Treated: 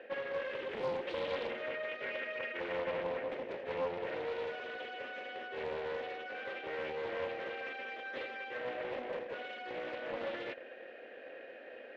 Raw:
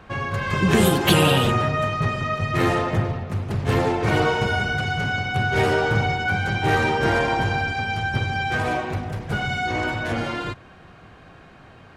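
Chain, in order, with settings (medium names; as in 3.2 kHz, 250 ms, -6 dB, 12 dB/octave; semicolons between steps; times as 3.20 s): FFT band-pass 210–9700 Hz; reverse; compression 6:1, threshold -32 dBFS, peak gain reduction 17 dB; reverse; saturation -34 dBFS, distortion -12 dB; vowel filter e; distance through air 110 m; loudspeaker Doppler distortion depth 0.34 ms; trim +11 dB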